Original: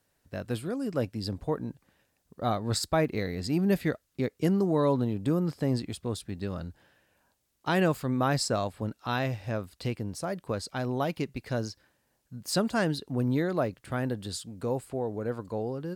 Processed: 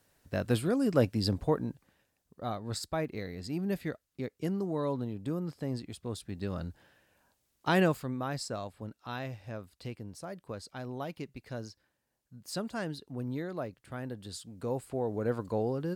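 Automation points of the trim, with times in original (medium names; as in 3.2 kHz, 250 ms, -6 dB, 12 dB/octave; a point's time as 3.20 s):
1.29 s +4 dB
2.48 s -7.5 dB
5.84 s -7.5 dB
6.65 s 0 dB
7.80 s 0 dB
8.21 s -9 dB
14.05 s -9 dB
15.31 s +1.5 dB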